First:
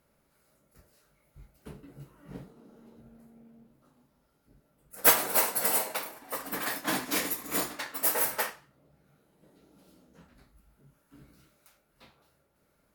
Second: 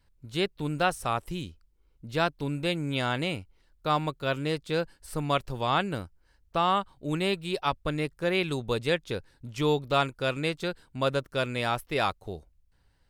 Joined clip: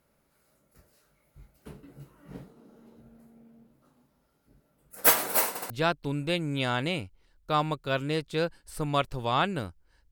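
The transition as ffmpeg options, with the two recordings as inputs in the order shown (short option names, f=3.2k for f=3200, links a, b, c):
-filter_complex "[0:a]apad=whole_dur=10.11,atrim=end=10.11,asplit=3[a][b][c];[a]atrim=end=5.562[d];[b]atrim=start=5.488:end=5.562[e];[c]atrim=start=5.488:end=5.562[f];[1:a]atrim=start=2.058:end=6.47[g];[d][e]acrossfade=d=0.004:c1=hsin:c2=hsin[h];[h][f]acrossfade=d=0.004:c1=hsin:c2=hsin[i];[i][g]acrossfade=d=0.004:c1=hsin:c2=hsin"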